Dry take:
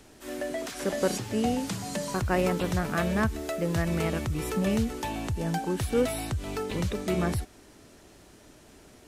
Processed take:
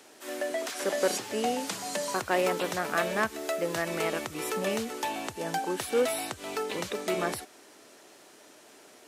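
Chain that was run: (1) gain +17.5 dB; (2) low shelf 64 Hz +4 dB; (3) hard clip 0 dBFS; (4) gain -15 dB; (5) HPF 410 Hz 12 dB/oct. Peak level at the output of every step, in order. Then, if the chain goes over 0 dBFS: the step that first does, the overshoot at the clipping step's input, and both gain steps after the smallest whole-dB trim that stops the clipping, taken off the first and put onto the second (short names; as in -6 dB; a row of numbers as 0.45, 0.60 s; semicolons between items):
+4.5, +5.0, 0.0, -15.0, -11.5 dBFS; step 1, 5.0 dB; step 1 +12.5 dB, step 4 -10 dB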